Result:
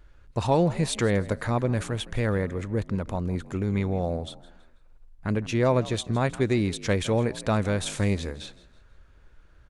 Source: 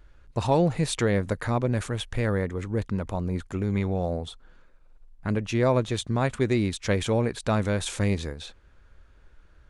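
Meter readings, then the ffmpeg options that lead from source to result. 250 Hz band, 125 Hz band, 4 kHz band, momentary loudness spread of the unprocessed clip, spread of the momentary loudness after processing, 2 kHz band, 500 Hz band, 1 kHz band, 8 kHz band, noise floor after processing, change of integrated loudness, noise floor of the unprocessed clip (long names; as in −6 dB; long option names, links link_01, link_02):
0.0 dB, 0.0 dB, 0.0 dB, 8 LU, 8 LU, 0.0 dB, 0.0 dB, 0.0 dB, 0.0 dB, −55 dBFS, 0.0 dB, −56 dBFS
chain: -filter_complex "[0:a]asplit=4[link_01][link_02][link_03][link_04];[link_02]adelay=163,afreqshift=51,volume=-19dB[link_05];[link_03]adelay=326,afreqshift=102,volume=-28.1dB[link_06];[link_04]adelay=489,afreqshift=153,volume=-37.2dB[link_07];[link_01][link_05][link_06][link_07]amix=inputs=4:normalize=0"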